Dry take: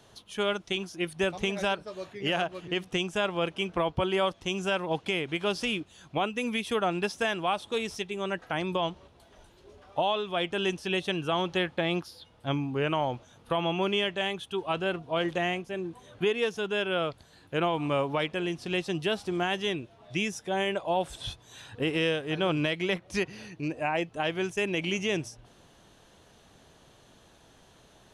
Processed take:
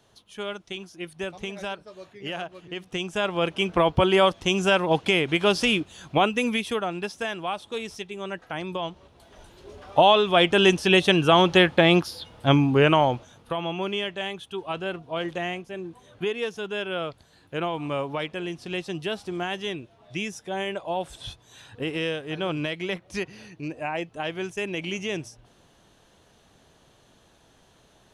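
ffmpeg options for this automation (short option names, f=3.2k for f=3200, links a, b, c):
-af "volume=20.5dB,afade=t=in:st=2.79:d=1.13:silence=0.237137,afade=t=out:st=6.28:d=0.58:silence=0.334965,afade=t=in:st=8.91:d=1.19:silence=0.237137,afade=t=out:st=12.75:d=0.8:silence=0.251189"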